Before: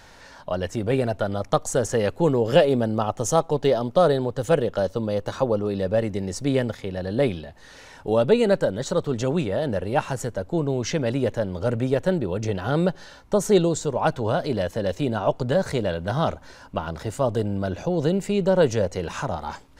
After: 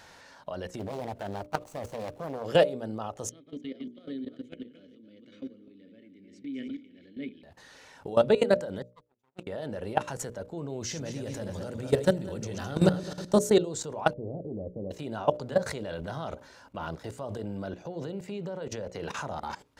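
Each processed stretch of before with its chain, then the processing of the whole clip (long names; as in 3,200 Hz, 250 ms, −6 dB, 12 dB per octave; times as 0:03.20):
0:00.79–0:02.46: running median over 25 samples + high-shelf EQ 6,900 Hz +8.5 dB + highs frequency-modulated by the lows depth 0.93 ms
0:03.29–0:07.43: feedback delay that plays each chunk backwards 151 ms, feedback 43%, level −8 dB + formant filter i
0:08.82–0:09.47: lower of the sound and its delayed copy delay 0.84 ms + noise gate −23 dBFS, range −48 dB
0:10.81–0:13.50: feedback delay that plays each chunk backwards 106 ms, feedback 52%, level −6 dB + bass and treble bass +6 dB, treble +10 dB
0:14.13–0:14.91: inverse Chebyshev low-pass filter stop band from 1,200 Hz, stop band 50 dB + highs frequency-modulated by the lows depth 0.14 ms
0:17.37–0:19.17: high-pass filter 81 Hz + dynamic equaliser 9,300 Hz, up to −6 dB, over −52 dBFS, Q 0.82 + downward compressor 2 to 1, threshold −27 dBFS
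whole clip: high-pass filter 130 Hz 6 dB per octave; output level in coarse steps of 18 dB; mains-hum notches 60/120/180/240/300/360/420/480/540/600 Hz; level +1 dB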